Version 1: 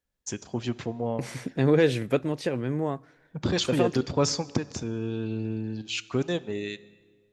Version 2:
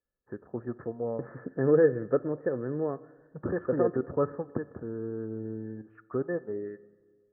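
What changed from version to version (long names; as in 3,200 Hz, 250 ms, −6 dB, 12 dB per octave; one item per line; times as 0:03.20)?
second voice: send +11.5 dB
master: add Chebyshev low-pass with heavy ripple 1,800 Hz, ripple 9 dB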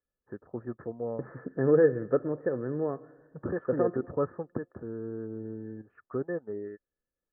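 first voice: send off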